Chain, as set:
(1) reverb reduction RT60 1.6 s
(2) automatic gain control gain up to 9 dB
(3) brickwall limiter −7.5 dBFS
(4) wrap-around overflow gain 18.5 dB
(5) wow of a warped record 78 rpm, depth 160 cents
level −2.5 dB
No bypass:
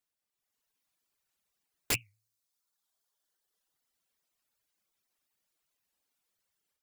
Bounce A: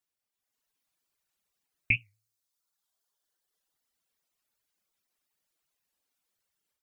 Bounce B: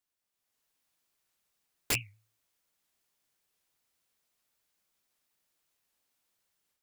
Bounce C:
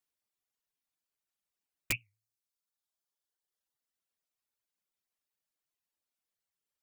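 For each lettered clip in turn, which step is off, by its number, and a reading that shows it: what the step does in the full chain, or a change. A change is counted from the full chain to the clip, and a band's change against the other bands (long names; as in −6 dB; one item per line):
4, change in crest factor +4.0 dB
1, 125 Hz band +2.5 dB
2, 2 kHz band +5.0 dB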